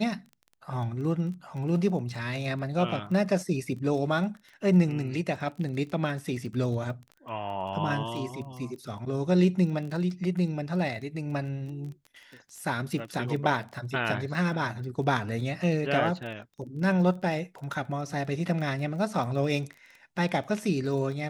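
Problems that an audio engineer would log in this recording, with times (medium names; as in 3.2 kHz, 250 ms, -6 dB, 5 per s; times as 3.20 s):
crackle 18 per s -37 dBFS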